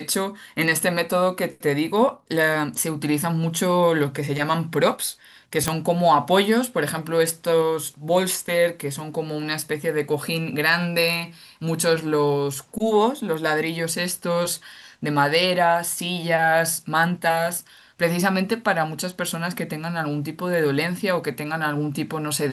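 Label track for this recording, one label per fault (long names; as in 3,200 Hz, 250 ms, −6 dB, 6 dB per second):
5.680000	5.680000	click −6 dBFS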